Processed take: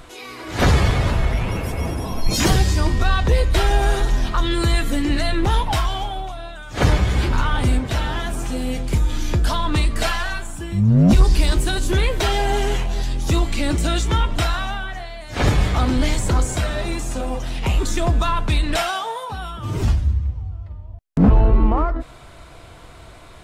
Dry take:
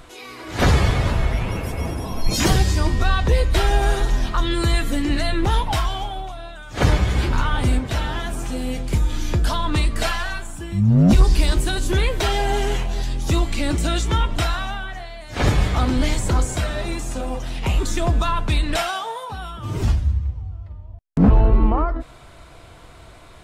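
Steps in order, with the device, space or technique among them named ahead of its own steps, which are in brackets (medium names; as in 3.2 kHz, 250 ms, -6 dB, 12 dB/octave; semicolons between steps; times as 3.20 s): parallel distortion (in parallel at -12 dB: hard clipper -23 dBFS, distortion -5 dB)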